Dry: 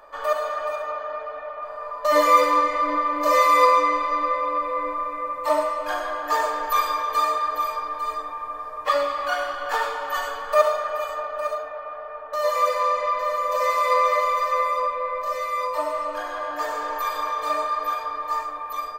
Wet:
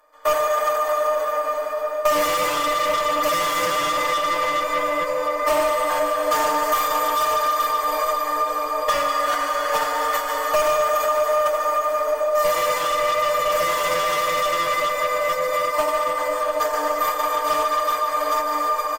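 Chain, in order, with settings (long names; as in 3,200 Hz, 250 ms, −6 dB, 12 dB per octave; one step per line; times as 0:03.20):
compressor on every frequency bin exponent 0.6
noise gate −18 dBFS, range −36 dB
echo with a time of its own for lows and highs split 700 Hz, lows 765 ms, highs 144 ms, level −13 dB
convolution reverb RT60 5.7 s, pre-delay 174 ms, DRR 4.5 dB
soft clipping −17 dBFS, distortion −10 dB
high-shelf EQ 2,800 Hz +10.5 dB
downward compressor, threshold −28 dBFS, peak gain reduction 12 dB
parametric band 4,000 Hz −6.5 dB 0.67 octaves
comb filter 6.5 ms, depth 80%
level +7 dB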